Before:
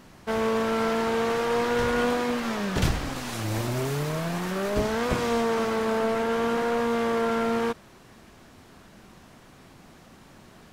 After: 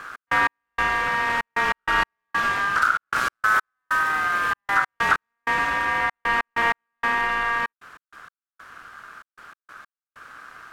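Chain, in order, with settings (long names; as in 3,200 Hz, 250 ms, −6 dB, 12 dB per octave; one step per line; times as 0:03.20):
low-shelf EQ 350 Hz +11.5 dB
downward compressor 2.5 to 1, threshold −22 dBFS, peak gain reduction 9.5 dB
gate pattern "x.x..xxxx." 96 BPM −60 dB
speech leveller 0.5 s
ring modulation 1,400 Hz
level +5 dB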